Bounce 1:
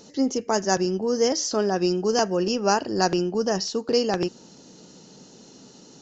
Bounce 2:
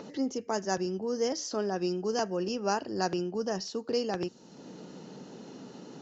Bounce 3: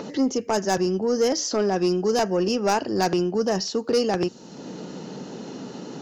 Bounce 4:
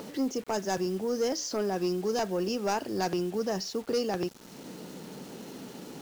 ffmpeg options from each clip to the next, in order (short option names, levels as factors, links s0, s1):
-filter_complex "[0:a]highpass=44,highshelf=f=6300:g=-5,acrossover=split=110|2900[s0][s1][s2];[s1]acompressor=mode=upward:threshold=0.0501:ratio=2.5[s3];[s0][s3][s2]amix=inputs=3:normalize=0,volume=0.398"
-af "aeval=exprs='0.188*(cos(1*acos(clip(val(0)/0.188,-1,1)))-cos(1*PI/2))+0.0299*(cos(5*acos(clip(val(0)/0.188,-1,1)))-cos(5*PI/2))':c=same,volume=1.78"
-af "acrusher=bits=6:mix=0:aa=0.000001,volume=0.422"